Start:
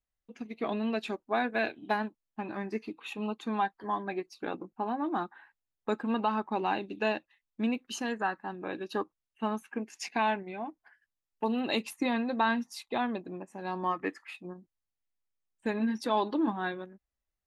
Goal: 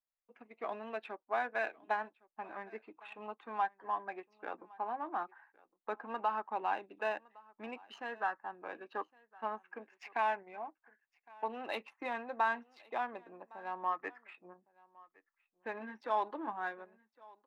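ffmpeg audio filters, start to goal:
-filter_complex "[0:a]adynamicsmooth=sensitivity=5.5:basefreq=2300,acrossover=split=520 2500:gain=0.1 1 0.178[s0][s1][s2];[s0][s1][s2]amix=inputs=3:normalize=0,aecho=1:1:1111:0.0631,volume=0.794"

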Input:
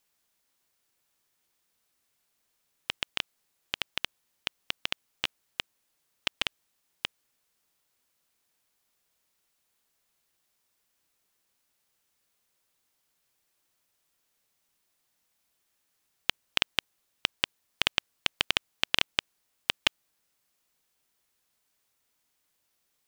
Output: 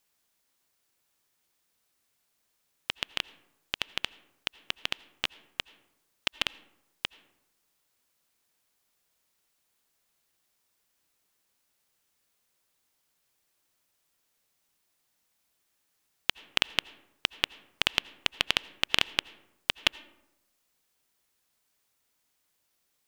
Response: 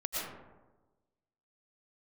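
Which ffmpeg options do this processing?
-filter_complex "[0:a]asplit=2[s0][s1];[s1]equalizer=f=310:w=1.5:g=6[s2];[1:a]atrim=start_sample=2205,asetrate=61740,aresample=44100[s3];[s2][s3]afir=irnorm=-1:irlink=0,volume=0.0891[s4];[s0][s4]amix=inputs=2:normalize=0"

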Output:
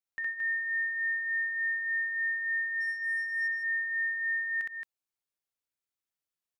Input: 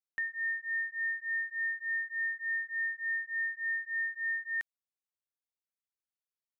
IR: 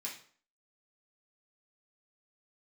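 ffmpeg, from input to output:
-filter_complex "[0:a]asplit=3[s0][s1][s2];[s0]afade=t=out:st=2.8:d=0.02[s3];[s1]adynamicsmooth=sensitivity=6.5:basefreq=1700,afade=t=in:st=2.8:d=0.02,afade=t=out:st=3.4:d=0.02[s4];[s2]afade=t=in:st=3.4:d=0.02[s5];[s3][s4][s5]amix=inputs=3:normalize=0,aecho=1:1:64.14|221.6:1|0.631,volume=0.794"

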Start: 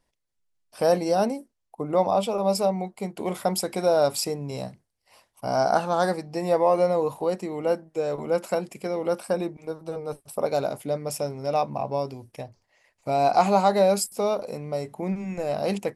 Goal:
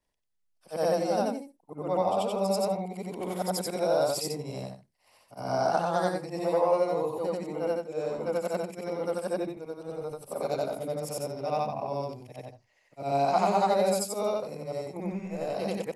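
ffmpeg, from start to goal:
-af "afftfilt=real='re':imag='-im':win_size=8192:overlap=0.75"

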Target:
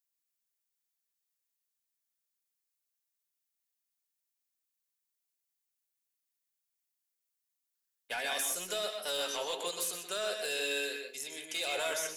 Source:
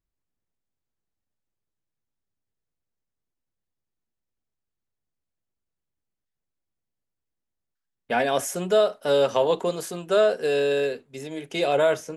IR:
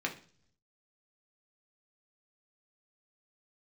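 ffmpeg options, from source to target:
-filter_complex "[0:a]aderivative,alimiter=level_in=2.11:limit=0.0631:level=0:latency=1:release=42,volume=0.473,asoftclip=type=hard:threshold=0.0168,asplit=2[s0][s1];[1:a]atrim=start_sample=2205,adelay=124[s2];[s1][s2]afir=irnorm=-1:irlink=0,volume=0.447[s3];[s0][s3]amix=inputs=2:normalize=0,volume=2.11"

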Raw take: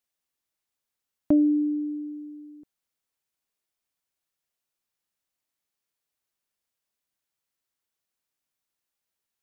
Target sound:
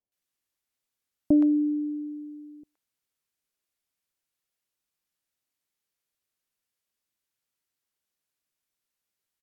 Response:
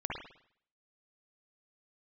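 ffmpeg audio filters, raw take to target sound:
-filter_complex "[0:a]acrossover=split=830[s0][s1];[s1]adelay=120[s2];[s0][s2]amix=inputs=2:normalize=0" -ar 44100 -c:a libvorbis -b:a 192k

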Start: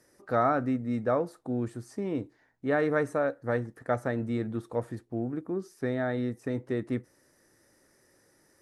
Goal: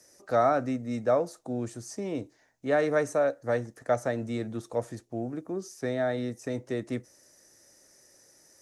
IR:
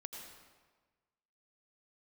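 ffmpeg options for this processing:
-filter_complex "[0:a]acrossover=split=250|590|3400[s0][s1][s2][s3];[s3]acontrast=76[s4];[s0][s1][s2][s4]amix=inputs=4:normalize=0,equalizer=f=630:t=o:w=0.67:g=7,equalizer=f=2500:t=o:w=0.67:g=3,equalizer=f=6300:t=o:w=0.67:g=10,volume=0.75"

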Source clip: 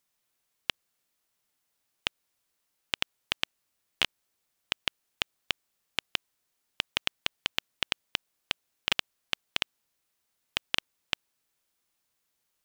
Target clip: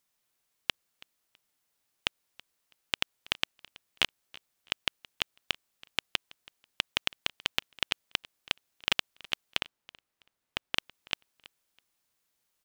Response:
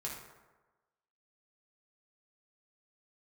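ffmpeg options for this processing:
-filter_complex "[0:a]asettb=1/sr,asplit=3[s0][s1][s2];[s0]atrim=end=9.604[s3];[s1]atrim=start=9.6:end=10.75,asetpts=PTS-STARTPTS,afade=t=in:d=0.004:c=qsin,afade=t=out:st=1.146:d=0.004:c=qsin,highshelf=f=3000:g=-9[s4];[s2]atrim=start=10.746[s5];[s3][s4]acrossfade=d=0.004:c1=hsin:c2=qsin[s6];[s6][s5]acrossfade=d=0.004:c1=qsin:c2=hsin,asplit=2[s7][s8];[s8]aecho=0:1:327|654:0.075|0.0165[s9];[s7][s9]amix=inputs=2:normalize=0"

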